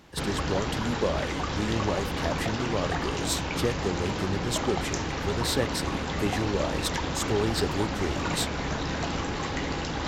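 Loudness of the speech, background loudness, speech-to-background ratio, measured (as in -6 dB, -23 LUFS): -31.5 LUFS, -30.5 LUFS, -1.0 dB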